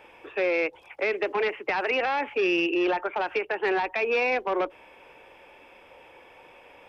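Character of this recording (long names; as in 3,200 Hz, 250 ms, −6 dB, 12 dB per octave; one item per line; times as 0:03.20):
background noise floor −53 dBFS
spectral slope −0.5 dB per octave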